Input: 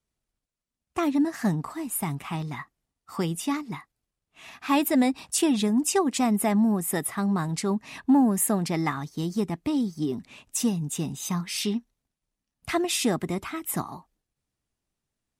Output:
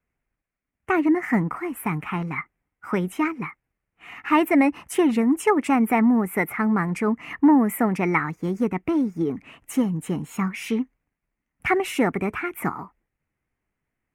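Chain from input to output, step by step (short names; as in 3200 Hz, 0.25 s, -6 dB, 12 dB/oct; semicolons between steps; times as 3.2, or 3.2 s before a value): resonant high shelf 2700 Hz -11 dB, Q 3; speed mistake 44.1 kHz file played as 48 kHz; gain +3.5 dB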